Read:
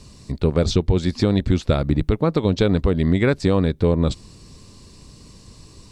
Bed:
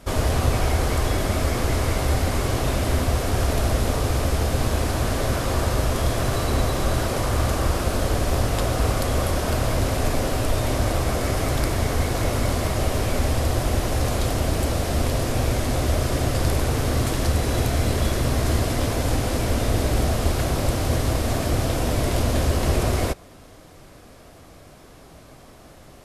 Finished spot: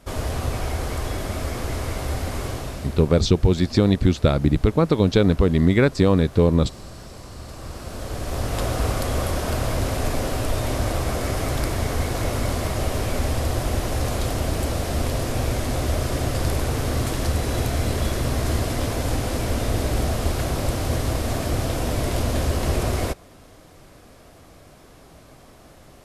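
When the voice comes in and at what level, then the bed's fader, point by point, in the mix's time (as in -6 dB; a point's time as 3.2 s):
2.55 s, +1.0 dB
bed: 2.47 s -5 dB
3.23 s -18.5 dB
7.36 s -18.5 dB
8.62 s -1.5 dB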